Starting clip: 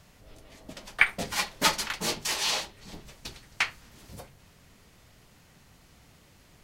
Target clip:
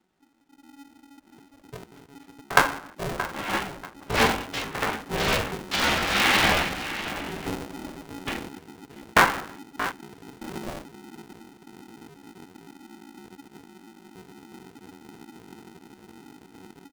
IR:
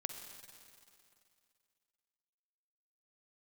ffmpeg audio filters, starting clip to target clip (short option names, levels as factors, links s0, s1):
-filter_complex "[0:a]adynamicequalizer=threshold=0.00126:dfrequency=510:dqfactor=6.6:tfrequency=510:tqfactor=6.6:attack=5:release=100:ratio=0.375:range=2.5:mode=cutabove:tftype=bell,asplit=2[s0][s1];[1:a]atrim=start_sample=2205,afade=t=out:st=0.18:d=0.01,atrim=end_sample=8379,lowpass=4300[s2];[s1][s2]afir=irnorm=-1:irlink=0,volume=0.266[s3];[s0][s3]amix=inputs=2:normalize=0,dynaudnorm=f=440:g=3:m=3.55,aecho=1:1:250|500|750:0.251|0.0628|0.0157,afwtdn=0.0141,asetrate=25442,aresample=44100,highshelf=f=2300:g=-5,atempo=0.68,aeval=exprs='val(0)*sgn(sin(2*PI*280*n/s))':c=same"